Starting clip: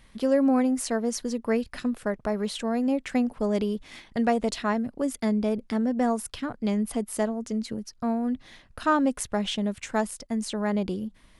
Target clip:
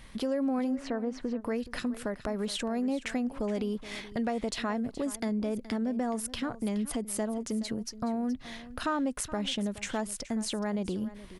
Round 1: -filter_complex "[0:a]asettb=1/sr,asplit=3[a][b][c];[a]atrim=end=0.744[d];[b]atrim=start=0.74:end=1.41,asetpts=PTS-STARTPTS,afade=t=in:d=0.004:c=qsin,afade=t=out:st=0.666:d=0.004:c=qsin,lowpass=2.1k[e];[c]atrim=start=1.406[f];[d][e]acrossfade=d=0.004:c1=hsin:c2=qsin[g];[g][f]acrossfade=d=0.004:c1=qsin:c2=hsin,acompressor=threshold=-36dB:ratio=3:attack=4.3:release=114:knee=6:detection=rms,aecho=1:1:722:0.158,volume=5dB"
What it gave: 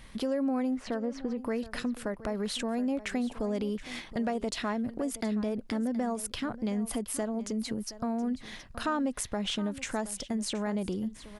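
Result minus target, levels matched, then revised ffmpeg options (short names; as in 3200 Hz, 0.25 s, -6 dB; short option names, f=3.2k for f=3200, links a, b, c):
echo 0.3 s late
-filter_complex "[0:a]asettb=1/sr,asplit=3[a][b][c];[a]atrim=end=0.744[d];[b]atrim=start=0.74:end=1.41,asetpts=PTS-STARTPTS,afade=t=in:d=0.004:c=qsin,afade=t=out:st=0.666:d=0.004:c=qsin,lowpass=2.1k[e];[c]atrim=start=1.406[f];[d][e]acrossfade=d=0.004:c1=hsin:c2=qsin[g];[g][f]acrossfade=d=0.004:c1=qsin:c2=hsin,acompressor=threshold=-36dB:ratio=3:attack=4.3:release=114:knee=6:detection=rms,aecho=1:1:422:0.158,volume=5dB"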